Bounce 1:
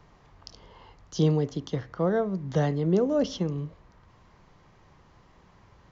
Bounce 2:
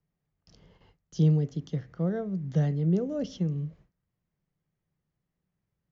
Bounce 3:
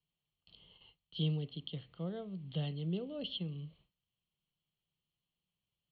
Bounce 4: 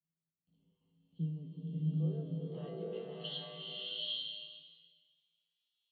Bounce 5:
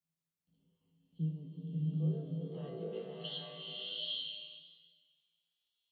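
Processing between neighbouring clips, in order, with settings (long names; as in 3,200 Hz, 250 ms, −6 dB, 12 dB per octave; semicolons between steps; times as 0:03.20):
graphic EQ with 15 bands 160 Hz +10 dB, 1,000 Hz −10 dB, 4,000 Hz −3 dB; noise gate with hold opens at −42 dBFS; level −7 dB
Chebyshev low-pass with heavy ripple 4,400 Hz, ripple 9 dB; high shelf with overshoot 2,100 Hz +9.5 dB, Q 3; level −3 dB
band-pass filter sweep 210 Hz → 3,600 Hz, 0:01.77–0:03.28; tuned comb filter 55 Hz, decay 0.56 s, harmonics odd, mix 90%; slow-attack reverb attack 800 ms, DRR −6.5 dB; level +12.5 dB
flanger 1.2 Hz, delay 9.9 ms, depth 9.6 ms, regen +69%; level +4 dB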